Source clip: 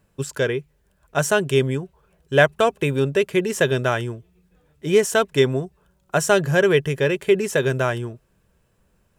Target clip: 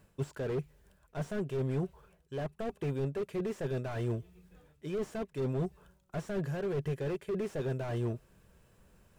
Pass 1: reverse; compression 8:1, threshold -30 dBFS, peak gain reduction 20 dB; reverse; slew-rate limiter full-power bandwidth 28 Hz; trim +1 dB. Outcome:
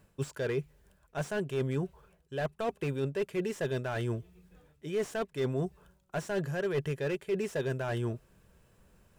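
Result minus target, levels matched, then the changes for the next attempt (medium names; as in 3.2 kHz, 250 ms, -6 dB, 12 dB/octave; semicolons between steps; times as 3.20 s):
slew-rate limiter: distortion -8 dB
change: slew-rate limiter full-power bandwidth 10.5 Hz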